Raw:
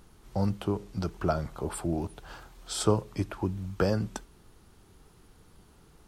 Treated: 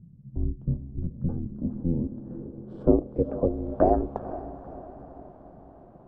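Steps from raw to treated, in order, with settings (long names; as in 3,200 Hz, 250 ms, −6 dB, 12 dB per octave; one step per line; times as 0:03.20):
feedback delay with all-pass diffusion 485 ms, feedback 53%, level −14 dB
ring modulation 170 Hz
low-pass filter sweep 150 Hz → 790 Hz, 0:01.02–0:04.12
level +5 dB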